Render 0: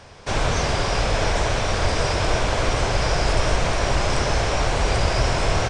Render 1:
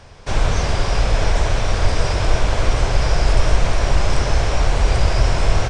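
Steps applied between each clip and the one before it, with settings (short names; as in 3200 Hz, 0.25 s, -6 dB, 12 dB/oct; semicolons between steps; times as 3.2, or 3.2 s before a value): low shelf 78 Hz +11 dB; gain -1 dB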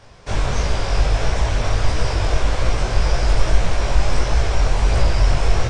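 chorus voices 2, 1.5 Hz, delay 19 ms, depth 3 ms; gain +1 dB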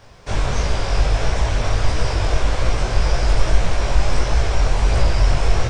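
requantised 12-bit, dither none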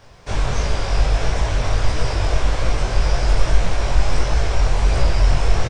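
doubler 23 ms -12 dB; gain -1 dB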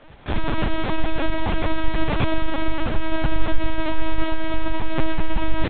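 LPC vocoder at 8 kHz pitch kept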